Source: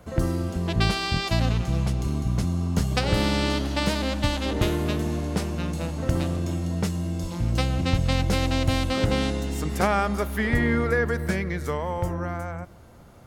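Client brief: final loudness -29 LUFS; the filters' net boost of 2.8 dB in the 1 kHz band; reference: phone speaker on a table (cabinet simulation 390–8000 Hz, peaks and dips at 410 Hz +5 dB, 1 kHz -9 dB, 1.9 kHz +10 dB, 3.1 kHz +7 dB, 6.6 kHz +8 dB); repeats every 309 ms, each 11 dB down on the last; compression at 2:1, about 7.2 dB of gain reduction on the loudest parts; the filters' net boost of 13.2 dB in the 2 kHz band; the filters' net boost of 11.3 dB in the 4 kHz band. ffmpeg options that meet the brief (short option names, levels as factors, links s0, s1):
-af "equalizer=f=1000:t=o:g=5,equalizer=f=2000:t=o:g=5,equalizer=f=4000:t=o:g=6.5,acompressor=threshold=0.0355:ratio=2,highpass=f=390:w=0.5412,highpass=f=390:w=1.3066,equalizer=f=410:t=q:w=4:g=5,equalizer=f=1000:t=q:w=4:g=-9,equalizer=f=1900:t=q:w=4:g=10,equalizer=f=3100:t=q:w=4:g=7,equalizer=f=6600:t=q:w=4:g=8,lowpass=f=8000:w=0.5412,lowpass=f=8000:w=1.3066,aecho=1:1:309|618|927:0.282|0.0789|0.0221,volume=0.75"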